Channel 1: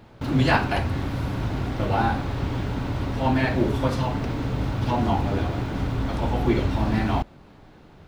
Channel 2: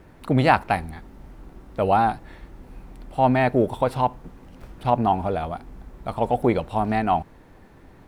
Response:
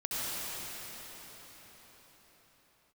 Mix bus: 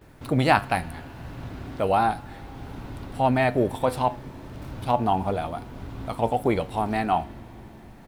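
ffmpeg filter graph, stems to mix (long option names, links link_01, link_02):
-filter_complex "[0:a]volume=-11.5dB,asplit=2[link_01][link_02];[link_02]volume=-15.5dB[link_03];[1:a]highshelf=frequency=4300:gain=9,flanger=delay=6.8:depth=7.7:regen=75:speed=0.34:shape=triangular,adelay=13,volume=2dB,asplit=2[link_04][link_05];[link_05]apad=whole_len=356196[link_06];[link_01][link_06]sidechaincompress=threshold=-37dB:ratio=8:attack=16:release=487[link_07];[2:a]atrim=start_sample=2205[link_08];[link_03][link_08]afir=irnorm=-1:irlink=0[link_09];[link_07][link_04][link_09]amix=inputs=3:normalize=0"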